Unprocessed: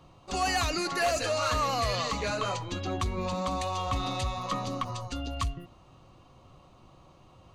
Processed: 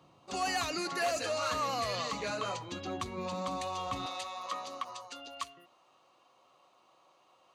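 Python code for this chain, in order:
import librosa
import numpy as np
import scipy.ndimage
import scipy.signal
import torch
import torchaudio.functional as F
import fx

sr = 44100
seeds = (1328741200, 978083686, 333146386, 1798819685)

y = fx.highpass(x, sr, hz=fx.steps((0.0, 150.0), (4.06, 570.0)), slope=12)
y = F.gain(torch.from_numpy(y), -4.5).numpy()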